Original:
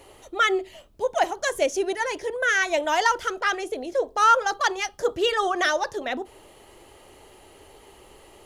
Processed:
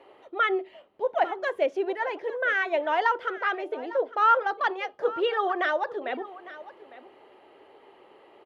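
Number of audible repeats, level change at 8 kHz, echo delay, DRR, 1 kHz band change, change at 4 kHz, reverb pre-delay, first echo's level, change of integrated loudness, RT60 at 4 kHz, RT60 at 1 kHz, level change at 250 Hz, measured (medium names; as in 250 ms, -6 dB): 1, under -25 dB, 854 ms, no reverb, -2.5 dB, -9.5 dB, no reverb, -17.0 dB, -3.0 dB, no reverb, no reverb, -3.0 dB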